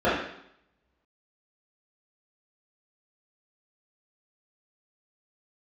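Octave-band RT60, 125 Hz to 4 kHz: 0.80, 0.75, 0.70, 0.75, 0.70, 0.75 s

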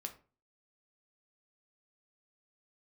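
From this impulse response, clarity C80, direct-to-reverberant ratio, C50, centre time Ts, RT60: 18.5 dB, 4.5 dB, 13.0 dB, 9 ms, 0.35 s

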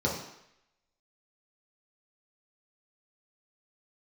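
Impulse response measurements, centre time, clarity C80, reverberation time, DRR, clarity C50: 39 ms, 7.5 dB, 0.80 s, -4.5 dB, 4.5 dB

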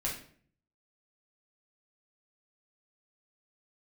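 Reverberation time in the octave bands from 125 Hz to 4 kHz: 0.85, 0.70, 0.60, 0.45, 0.50, 0.40 s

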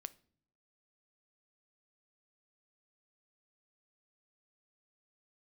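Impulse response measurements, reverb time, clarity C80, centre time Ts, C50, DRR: not exponential, 26.0 dB, 2 ms, 20.5 dB, 15.0 dB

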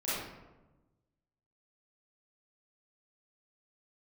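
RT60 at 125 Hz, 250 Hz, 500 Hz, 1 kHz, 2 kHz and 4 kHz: 1.6, 1.5, 1.2, 1.0, 0.80, 0.60 s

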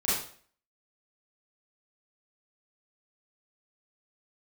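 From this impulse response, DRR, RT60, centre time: -10.5 dB, 0.50 s, 60 ms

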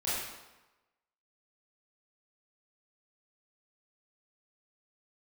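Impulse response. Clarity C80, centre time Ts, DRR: 1.5 dB, 89 ms, -11.0 dB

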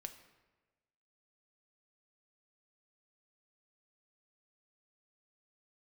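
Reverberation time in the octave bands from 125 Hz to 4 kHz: 1.3, 1.2, 1.3, 1.2, 1.1, 0.80 s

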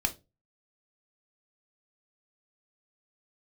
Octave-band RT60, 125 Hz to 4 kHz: 0.40, 0.35, 0.30, 0.20, 0.20, 0.20 s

